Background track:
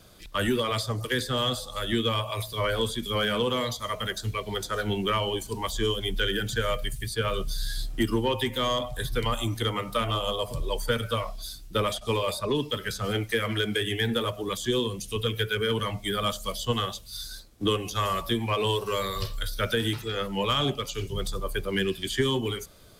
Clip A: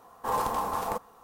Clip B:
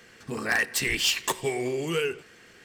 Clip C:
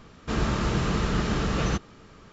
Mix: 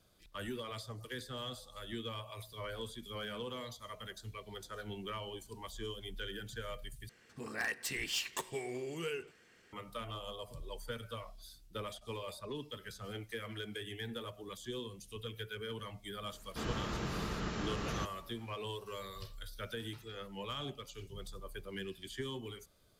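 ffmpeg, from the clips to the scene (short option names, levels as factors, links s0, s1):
-filter_complex "[0:a]volume=0.158[s0];[3:a]lowshelf=f=210:g=-5[s1];[s0]asplit=2[s2][s3];[s2]atrim=end=7.094[s4];[2:a]atrim=end=2.64,asetpts=PTS-STARTPTS,volume=0.251[s5];[s3]atrim=start=9.726[s6];[s1]atrim=end=2.32,asetpts=PTS-STARTPTS,volume=0.299,afade=t=in:d=0.004:c=hsin,afade=t=out:st=2.316:d=0.004:c=hsin,adelay=16280[s7];[s4][s5]acrossfade=d=0.004:c1=hsin:c2=hsin[s8];[s8][s6]acrossfade=d=0.004:c1=hsin:c2=hsin[s9];[s9][s7]amix=inputs=2:normalize=0"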